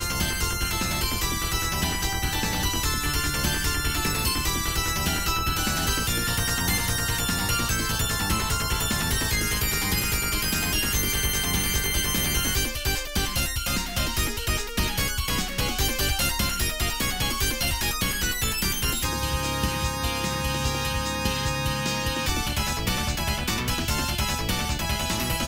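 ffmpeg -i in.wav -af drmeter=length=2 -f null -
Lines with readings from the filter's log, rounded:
Channel 1: DR: 8.4
Overall DR: 8.4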